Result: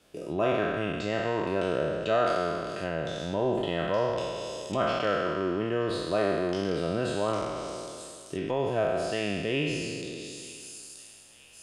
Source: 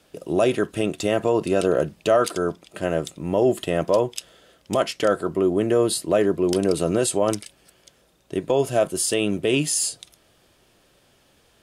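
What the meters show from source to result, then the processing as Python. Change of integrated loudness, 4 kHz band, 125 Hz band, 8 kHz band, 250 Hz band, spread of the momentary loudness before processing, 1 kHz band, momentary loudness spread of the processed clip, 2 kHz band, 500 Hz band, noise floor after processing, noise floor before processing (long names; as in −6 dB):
−7.0 dB, −5.5 dB, −5.0 dB, −16.0 dB, −7.5 dB, 7 LU, −2.5 dB, 12 LU, −1.5 dB, −7.0 dB, −51 dBFS, −60 dBFS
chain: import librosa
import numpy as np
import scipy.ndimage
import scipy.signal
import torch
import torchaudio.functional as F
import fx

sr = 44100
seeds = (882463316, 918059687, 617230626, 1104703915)

y = fx.spec_trails(x, sr, decay_s=2.07)
y = fx.dynamic_eq(y, sr, hz=400.0, q=0.73, threshold_db=-28.0, ratio=4.0, max_db=-6)
y = fx.echo_wet_highpass(y, sr, ms=928, feedback_pct=56, hz=2400.0, wet_db=-19.0)
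y = fx.env_lowpass_down(y, sr, base_hz=2700.0, full_db=-20.5)
y = F.gain(torch.from_numpy(y), -6.0).numpy()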